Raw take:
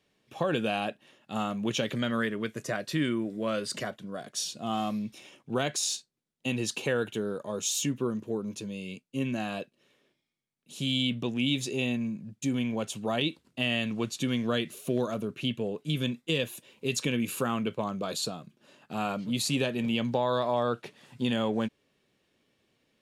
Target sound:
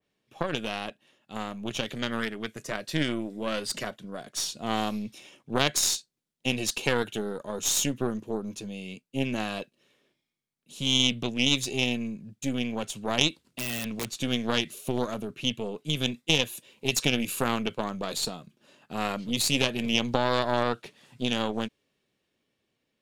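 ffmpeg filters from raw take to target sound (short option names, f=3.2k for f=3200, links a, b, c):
-filter_complex "[0:a]aeval=exprs='0.224*(cos(1*acos(clip(val(0)/0.224,-1,1)))-cos(1*PI/2))+0.1*(cos(2*acos(clip(val(0)/0.224,-1,1)))-cos(2*PI/2))+0.0316*(cos(3*acos(clip(val(0)/0.224,-1,1)))-cos(3*PI/2))':c=same,asettb=1/sr,asplit=3[a][b][c];[a]atrim=end=13.444[d];[b]atrim=start=13.44:end=14.09,asetpts=PTS-STARTPTS,afade=t=in:d=0.004:c=qsin,afade=t=out:st=0.646:d=0.004:c=qsin,aeval=exprs='(mod(23.7*val(0)+1,2)-1)/23.7':c=same[e];[c]atrim=start=14.086[f];[d][e]acrossfade=d=0.004:c1=hsin:c2=qsin[g];[g][f]acrossfade=d=0.004:c1=qsin:c2=hsin,dynaudnorm=f=600:g=9:m=6.5dB,adynamicequalizer=threshold=0.0158:dfrequency=2400:dqfactor=0.7:tfrequency=2400:tqfactor=0.7:attack=5:release=100:ratio=0.375:range=2.5:mode=boostabove:tftype=highshelf,volume=-1.5dB"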